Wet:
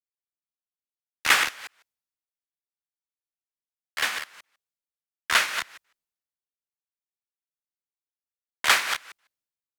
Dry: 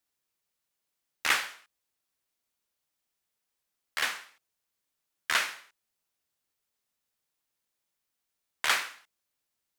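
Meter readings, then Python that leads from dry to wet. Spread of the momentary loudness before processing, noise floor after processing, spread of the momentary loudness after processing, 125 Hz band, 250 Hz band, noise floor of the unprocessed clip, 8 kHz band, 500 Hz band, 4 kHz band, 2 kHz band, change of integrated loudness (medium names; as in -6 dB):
14 LU, under -85 dBFS, 19 LU, no reading, +6.5 dB, -84 dBFS, +6.5 dB, +6.5 dB, +6.5 dB, +6.5 dB, +6.0 dB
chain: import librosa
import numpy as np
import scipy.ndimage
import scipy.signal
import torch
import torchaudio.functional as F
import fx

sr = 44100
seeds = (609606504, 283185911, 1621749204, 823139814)

y = fx.reverse_delay(x, sr, ms=152, wet_db=-5.5)
y = fx.band_widen(y, sr, depth_pct=70)
y = y * librosa.db_to_amplitude(2.5)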